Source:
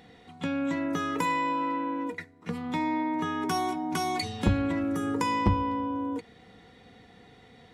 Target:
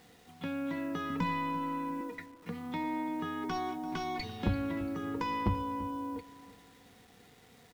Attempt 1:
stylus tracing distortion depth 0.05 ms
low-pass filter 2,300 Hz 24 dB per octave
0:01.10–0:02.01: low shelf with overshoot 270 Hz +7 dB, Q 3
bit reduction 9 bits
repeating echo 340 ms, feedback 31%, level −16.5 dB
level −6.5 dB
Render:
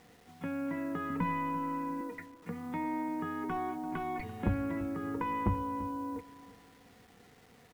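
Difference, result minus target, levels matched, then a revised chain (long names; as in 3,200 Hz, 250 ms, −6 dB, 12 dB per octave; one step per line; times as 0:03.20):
4,000 Hz band −11.5 dB
stylus tracing distortion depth 0.05 ms
low-pass filter 5,100 Hz 24 dB per octave
0:01.10–0:02.01: low shelf with overshoot 270 Hz +7 dB, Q 3
bit reduction 9 bits
repeating echo 340 ms, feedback 31%, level −16.5 dB
level −6.5 dB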